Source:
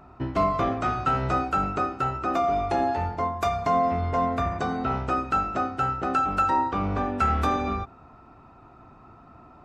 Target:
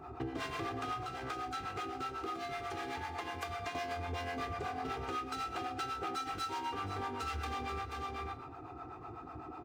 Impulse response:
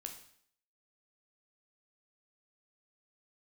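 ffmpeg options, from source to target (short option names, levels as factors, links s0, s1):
-filter_complex "[0:a]asoftclip=type=hard:threshold=0.0355,aecho=1:1:2.5:0.69,aecho=1:1:483:0.299,asettb=1/sr,asplit=3[s0][s1][s2];[s0]atrim=end=1.034[s3];[s1]atrim=start=1.03:end=3.75,asetpts=PTS-STARTPTS,afade=t=in:d=0.004:c=qsin,afade=t=out:st=2.716:d=0.004:c=qsin,acrossover=split=300|990|4100[s4][s5][s6][s7];[s4]acompressor=threshold=0.00631:ratio=4[s8];[s5]acompressor=threshold=0.00794:ratio=4[s9];[s6]acompressor=threshold=0.00891:ratio=4[s10];[s7]acompressor=threshold=0.00178:ratio=4[s11];[s8][s9][s10][s11]amix=inputs=4:normalize=0[s12];[s2]atrim=start=3.746[s13];[s3][s12]acrossfade=d=0.004:c1=hsin:c2=qsin[s14];[s14][s13]acrossfade=d=0.004:c1=qsin:c2=hsin,highpass=86[s15];[1:a]atrim=start_sample=2205[s16];[s15][s16]afir=irnorm=-1:irlink=0,acrossover=split=520[s17][s18];[s17]aeval=exprs='val(0)*(1-0.7/2+0.7/2*cos(2*PI*8*n/s))':c=same[s19];[s18]aeval=exprs='val(0)*(1-0.7/2-0.7/2*cos(2*PI*8*n/s))':c=same[s20];[s19][s20]amix=inputs=2:normalize=0,acompressor=threshold=0.00562:ratio=6,volume=2.66"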